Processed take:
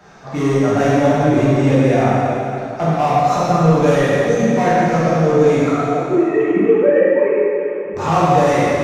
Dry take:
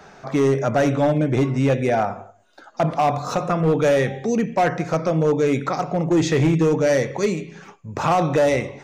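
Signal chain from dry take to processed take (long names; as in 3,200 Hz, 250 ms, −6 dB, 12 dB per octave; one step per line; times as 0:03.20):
0:05.69–0:07.94: three sine waves on the formant tracks
dense smooth reverb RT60 3 s, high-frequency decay 0.85×, DRR −9.5 dB
level −4.5 dB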